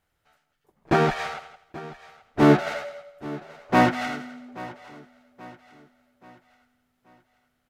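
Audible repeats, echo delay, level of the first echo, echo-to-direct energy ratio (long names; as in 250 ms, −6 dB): 3, 830 ms, −18.0 dB, −17.0 dB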